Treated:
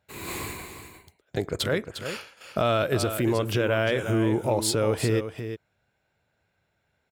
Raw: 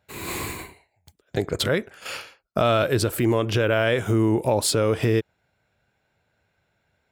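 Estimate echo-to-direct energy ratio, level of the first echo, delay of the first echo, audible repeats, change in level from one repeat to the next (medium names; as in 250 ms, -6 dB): -9.5 dB, -9.5 dB, 353 ms, 1, no regular repeats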